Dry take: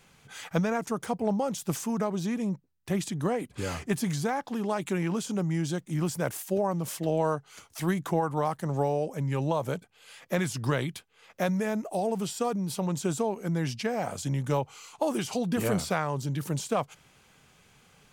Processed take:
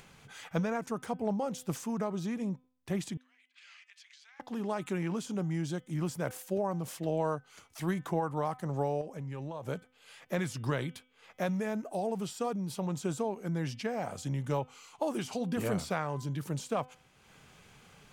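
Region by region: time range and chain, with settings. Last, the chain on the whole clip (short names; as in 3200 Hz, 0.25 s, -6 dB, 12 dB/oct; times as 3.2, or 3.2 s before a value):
3.17–4.4 compressor 12:1, threshold -33 dBFS + ladder high-pass 1800 Hz, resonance 25% + air absorption 140 m
9.01–9.67 high shelf 12000 Hz -8 dB + compressor 4:1, threshold -32 dBFS
whole clip: high shelf 5300 Hz -4.5 dB; de-hum 253.9 Hz, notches 14; upward compressor, threshold -44 dBFS; gain -4.5 dB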